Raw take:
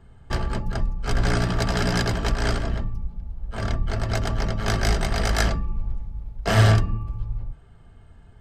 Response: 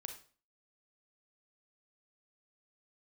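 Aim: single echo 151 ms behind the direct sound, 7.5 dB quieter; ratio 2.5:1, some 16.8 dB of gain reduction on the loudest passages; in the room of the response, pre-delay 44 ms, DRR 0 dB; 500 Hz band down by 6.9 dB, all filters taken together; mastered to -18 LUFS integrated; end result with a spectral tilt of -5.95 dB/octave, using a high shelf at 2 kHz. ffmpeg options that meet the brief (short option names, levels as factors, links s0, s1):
-filter_complex "[0:a]equalizer=f=500:t=o:g=-9,highshelf=f=2000:g=-8.5,acompressor=threshold=0.01:ratio=2.5,aecho=1:1:151:0.422,asplit=2[s0][s1];[1:a]atrim=start_sample=2205,adelay=44[s2];[s1][s2]afir=irnorm=-1:irlink=0,volume=1.5[s3];[s0][s3]amix=inputs=2:normalize=0,volume=8.91"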